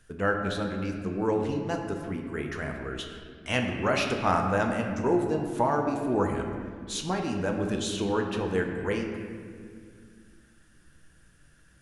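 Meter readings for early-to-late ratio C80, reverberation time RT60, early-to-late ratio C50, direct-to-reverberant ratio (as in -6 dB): 5.5 dB, 2.1 s, 4.5 dB, 2.0 dB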